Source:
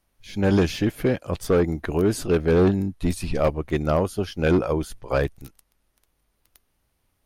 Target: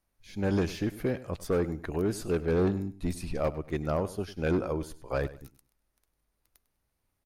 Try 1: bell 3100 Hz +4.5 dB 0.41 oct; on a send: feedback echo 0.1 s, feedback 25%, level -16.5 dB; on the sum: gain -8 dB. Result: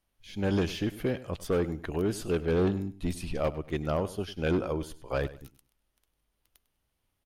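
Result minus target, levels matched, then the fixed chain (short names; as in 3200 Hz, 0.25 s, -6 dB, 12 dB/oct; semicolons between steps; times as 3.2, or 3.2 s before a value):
4000 Hz band +4.5 dB
bell 3100 Hz -4 dB 0.41 oct; on a send: feedback echo 0.1 s, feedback 25%, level -16.5 dB; on the sum: gain -8 dB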